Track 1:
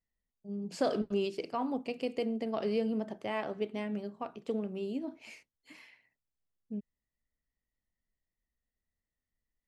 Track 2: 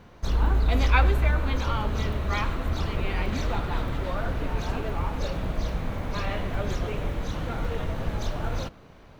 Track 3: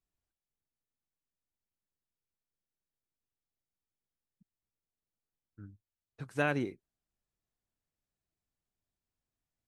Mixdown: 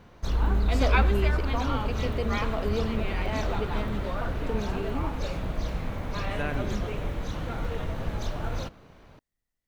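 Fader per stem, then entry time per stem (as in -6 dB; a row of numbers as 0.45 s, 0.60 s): +1.0 dB, -2.0 dB, -3.0 dB; 0.00 s, 0.00 s, 0.00 s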